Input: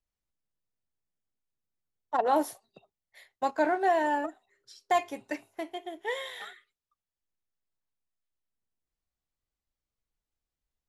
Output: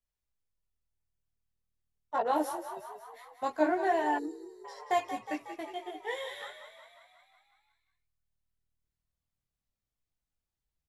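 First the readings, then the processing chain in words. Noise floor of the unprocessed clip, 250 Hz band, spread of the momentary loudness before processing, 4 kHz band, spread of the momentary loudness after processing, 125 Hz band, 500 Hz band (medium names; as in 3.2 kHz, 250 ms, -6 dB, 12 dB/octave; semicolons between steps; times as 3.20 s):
under -85 dBFS, -0.5 dB, 14 LU, -2.5 dB, 19 LU, no reading, -2.5 dB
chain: chorus voices 4, 0.86 Hz, delay 18 ms, depth 1.5 ms; frequency-shifting echo 182 ms, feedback 63%, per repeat +39 Hz, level -10.5 dB; time-frequency box 4.19–4.65 s, 490–3700 Hz -25 dB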